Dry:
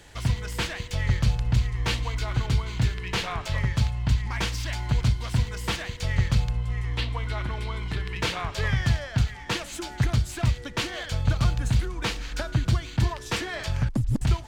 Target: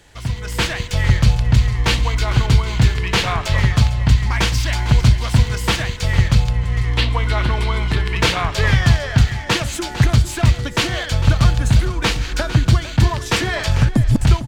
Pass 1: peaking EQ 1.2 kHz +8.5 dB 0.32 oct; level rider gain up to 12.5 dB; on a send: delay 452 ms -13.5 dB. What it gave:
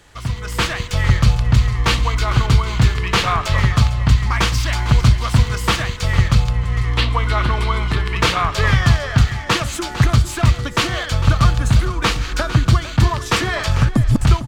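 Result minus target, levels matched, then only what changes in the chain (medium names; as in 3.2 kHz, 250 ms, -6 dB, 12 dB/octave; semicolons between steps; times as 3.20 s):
1 kHz band +3.5 dB
remove: peaking EQ 1.2 kHz +8.5 dB 0.32 oct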